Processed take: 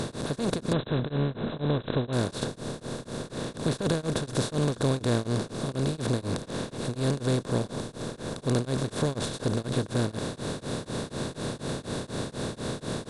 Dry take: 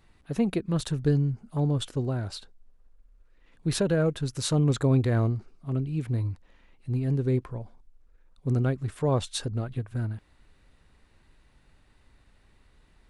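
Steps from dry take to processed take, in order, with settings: per-bin compression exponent 0.2; 0.73–2.13 brick-wall FIR low-pass 4100 Hz; beating tremolo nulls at 4.1 Hz; gain -6 dB

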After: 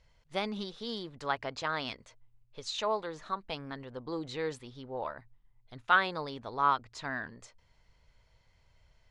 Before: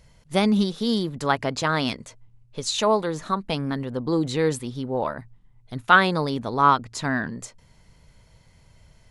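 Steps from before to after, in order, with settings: LPF 5000 Hz 12 dB/oct; bell 190 Hz -10.5 dB 1.9 oct; gain -8.5 dB

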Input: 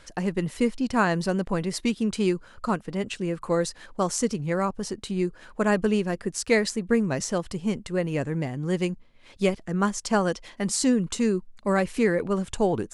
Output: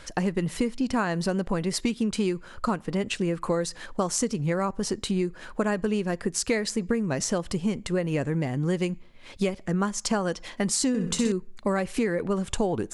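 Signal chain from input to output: on a send at -23.5 dB: reverb RT60 0.50 s, pre-delay 3 ms; on the sum: compressor, threshold -28 dBFS, peak gain reduction 11.5 dB; 10.88–11.32 flutter echo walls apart 10.9 m, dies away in 0.6 s; gain +5.5 dB

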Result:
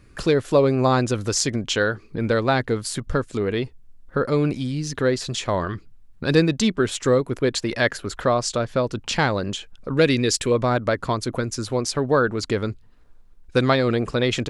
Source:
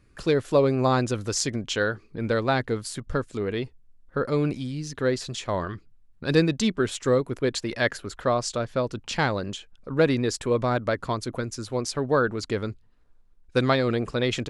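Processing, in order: 9.97–10.52 EQ curve 500 Hz 0 dB, 860 Hz -7 dB, 2500 Hz +6 dB; in parallel at +1.5 dB: compressor, threshold -34 dBFS, peak gain reduction 18 dB; on the sum: gain +1.5 dB

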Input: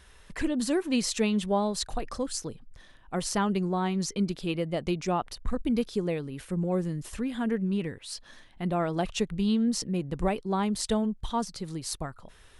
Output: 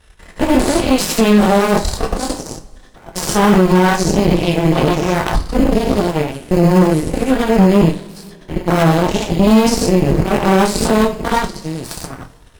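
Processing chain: stepped spectrum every 0.2 s; bell 62 Hz +3 dB 3 oct; in parallel at -9 dB: sample-and-hold 19×; on the sum: chorus voices 4, 0.86 Hz, delay 23 ms, depth 3.8 ms; added harmonics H 3 -22 dB, 7 -21 dB, 8 -19 dB, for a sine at -16.5 dBFS; reverb, pre-delay 3 ms, DRR 5 dB; maximiser +23 dB; gain -1 dB

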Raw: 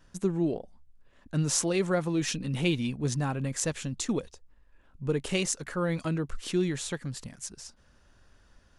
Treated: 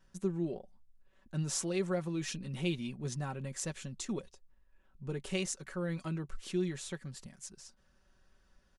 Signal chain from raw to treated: comb 5.3 ms, depth 50%; gain -9 dB

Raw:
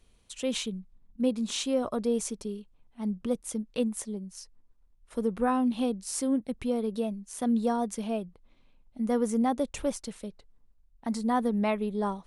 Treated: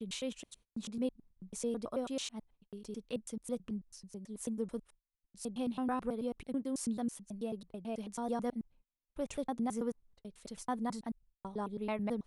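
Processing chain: slices in reverse order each 0.109 s, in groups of 7; gate -52 dBFS, range -30 dB; gain -8.5 dB

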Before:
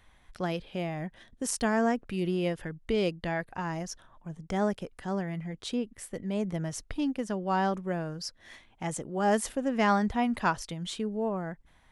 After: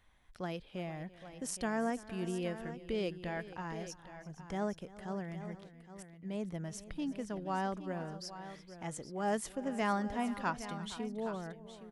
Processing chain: 5.54–6.23 flipped gate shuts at -32 dBFS, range -28 dB; tapped delay 0.338/0.465/0.816 s -19/-16/-12.5 dB; gain -8 dB

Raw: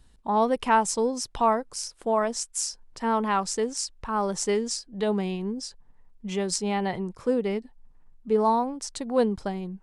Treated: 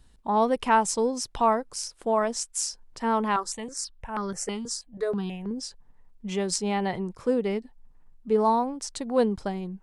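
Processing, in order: 3.36–5.51 step phaser 6.2 Hz 670–2600 Hz

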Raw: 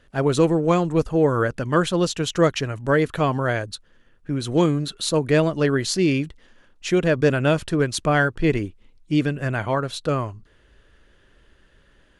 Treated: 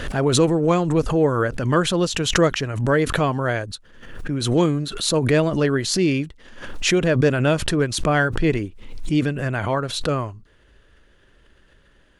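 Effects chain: backwards sustainer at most 59 dB/s

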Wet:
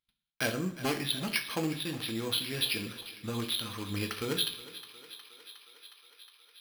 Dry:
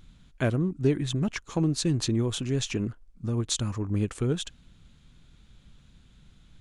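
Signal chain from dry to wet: one-sided fold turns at -20.5 dBFS; high shelf 2300 Hz +10.5 dB; gate -45 dBFS, range -36 dB; tilt +3.5 dB/oct; compressor 1.5:1, threshold -30 dBFS, peak gain reduction 8.5 dB; on a send: thinning echo 0.362 s, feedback 79%, high-pass 400 Hz, level -15.5 dB; on the sum: two-slope reverb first 0.47 s, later 1.7 s, DRR 4 dB; careless resampling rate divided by 6×, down filtered, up hold

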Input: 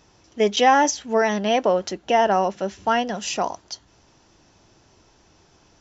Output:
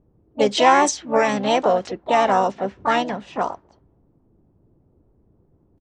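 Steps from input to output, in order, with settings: low-pass opened by the level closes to 310 Hz, open at -15.5 dBFS; harmoniser -7 st -17 dB, +4 st -8 dB, +5 st -9 dB

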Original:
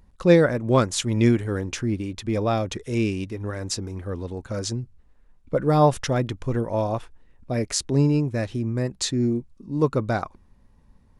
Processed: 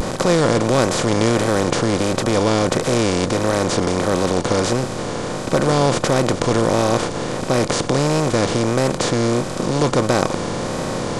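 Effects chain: per-bin compression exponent 0.2; vibrato 1.5 Hz 82 cents; gain -4 dB

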